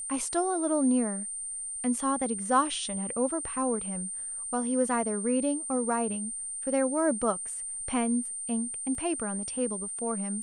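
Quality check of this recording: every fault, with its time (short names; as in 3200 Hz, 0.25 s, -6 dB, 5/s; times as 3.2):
tone 8900 Hz -34 dBFS
8.95 gap 2.9 ms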